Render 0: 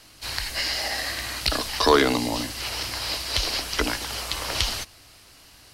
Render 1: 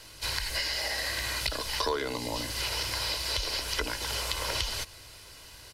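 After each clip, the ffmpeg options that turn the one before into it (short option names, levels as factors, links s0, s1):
-af "acompressor=threshold=0.0316:ratio=6,bandreject=f=1200:w=26,aecho=1:1:2:0.44,volume=1.12"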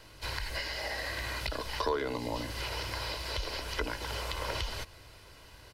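-af "equalizer=f=9100:w=0.31:g=-11.5"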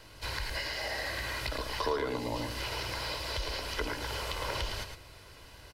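-filter_complex "[0:a]asplit=2[s0][s1];[s1]asoftclip=type=hard:threshold=0.0188,volume=0.355[s2];[s0][s2]amix=inputs=2:normalize=0,aecho=1:1:110:0.447,volume=0.794"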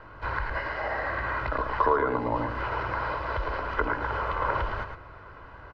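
-af "lowpass=f=1300:t=q:w=2.8,volume=1.78"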